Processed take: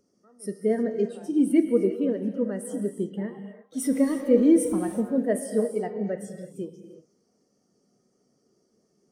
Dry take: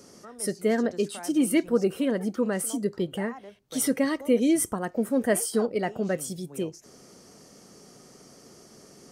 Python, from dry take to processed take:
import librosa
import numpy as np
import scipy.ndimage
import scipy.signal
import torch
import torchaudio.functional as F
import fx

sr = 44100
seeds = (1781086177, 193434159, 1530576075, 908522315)

y = fx.zero_step(x, sr, step_db=-30.0, at=(3.77, 5.03))
y = fx.rev_gated(y, sr, seeds[0], gate_ms=390, shape='flat', drr_db=3.5)
y = fx.spectral_expand(y, sr, expansion=1.5)
y = F.gain(torch.from_numpy(y), 1.0).numpy()